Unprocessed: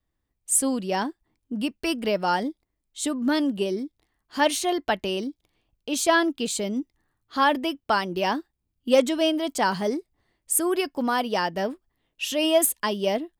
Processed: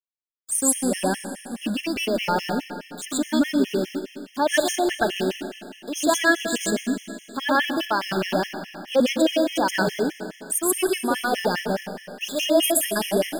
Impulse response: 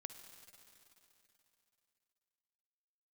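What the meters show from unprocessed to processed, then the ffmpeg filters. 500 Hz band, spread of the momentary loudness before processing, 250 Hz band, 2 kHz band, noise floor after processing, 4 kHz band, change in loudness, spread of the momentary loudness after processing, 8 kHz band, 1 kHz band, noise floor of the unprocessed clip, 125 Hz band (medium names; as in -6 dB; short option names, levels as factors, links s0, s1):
+1.5 dB, 12 LU, +2.5 dB, +3.5 dB, -49 dBFS, +2.0 dB, +1.5 dB, 13 LU, +2.5 dB, -0.5 dB, -79 dBFS, +4.0 dB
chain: -filter_complex "[0:a]aeval=exprs='val(0)*gte(abs(val(0)),0.0211)':c=same,asplit=2[s0][s1];[s1]equalizer=f=160:t=o:w=0.33:g=9,equalizer=f=1000:t=o:w=0.33:g=-12,equalizer=f=1600:t=o:w=0.33:g=3[s2];[1:a]atrim=start_sample=2205,asetrate=52920,aresample=44100,adelay=127[s3];[s2][s3]afir=irnorm=-1:irlink=0,volume=3.35[s4];[s0][s4]amix=inputs=2:normalize=0,afftfilt=real='re*gt(sin(2*PI*4.8*pts/sr)*(1-2*mod(floor(b*sr/1024/1700),2)),0)':imag='im*gt(sin(2*PI*4.8*pts/sr)*(1-2*mod(floor(b*sr/1024/1700),2)),0)':win_size=1024:overlap=0.75"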